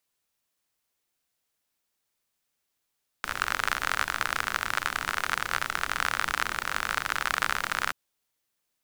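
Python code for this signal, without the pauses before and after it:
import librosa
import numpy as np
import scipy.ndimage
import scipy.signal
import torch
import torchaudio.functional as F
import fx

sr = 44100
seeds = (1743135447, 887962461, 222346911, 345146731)

y = fx.rain(sr, seeds[0], length_s=4.68, drops_per_s=50.0, hz=1400.0, bed_db=-13)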